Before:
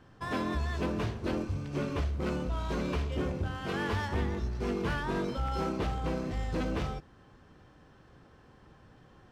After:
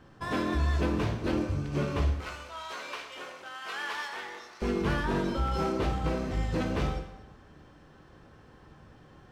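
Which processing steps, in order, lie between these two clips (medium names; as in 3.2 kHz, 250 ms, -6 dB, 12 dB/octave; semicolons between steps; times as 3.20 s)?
2.12–4.62 s: high-pass 1 kHz 12 dB/octave; plate-style reverb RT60 0.99 s, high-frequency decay 0.85×, DRR 5 dB; trim +2 dB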